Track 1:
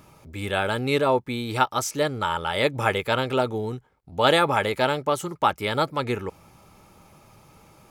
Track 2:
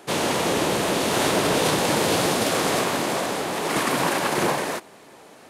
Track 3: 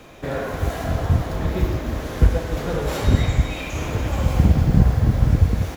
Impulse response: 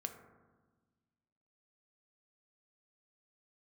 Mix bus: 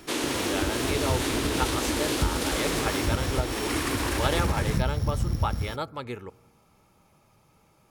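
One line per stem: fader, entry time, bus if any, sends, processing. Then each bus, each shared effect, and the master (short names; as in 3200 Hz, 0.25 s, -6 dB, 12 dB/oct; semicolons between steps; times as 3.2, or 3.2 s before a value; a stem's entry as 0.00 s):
-10.5 dB, 0.00 s, no bus, send -13 dB, dry
-2.0 dB, 0.00 s, bus A, no send, resonant low shelf 220 Hz -8 dB, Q 3
-7.5 dB, 0.00 s, bus A, send -14.5 dB, sample sorter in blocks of 8 samples
bus A: 0.0 dB, bell 650 Hz -9 dB 1.4 oct; compressor 4:1, threshold -24 dBFS, peak gain reduction 8 dB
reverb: on, RT60 1.3 s, pre-delay 3 ms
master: dry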